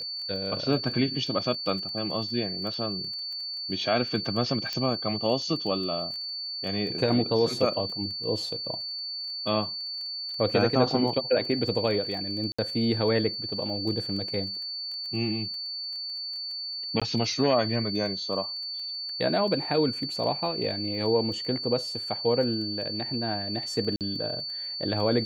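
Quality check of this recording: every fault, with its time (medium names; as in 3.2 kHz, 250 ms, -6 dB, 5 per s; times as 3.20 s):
crackle 12 per s -35 dBFS
whine 4.5 kHz -32 dBFS
4.73 s: pop -17 dBFS
12.52–12.59 s: dropout 65 ms
17.00–17.02 s: dropout 16 ms
23.96–24.01 s: dropout 48 ms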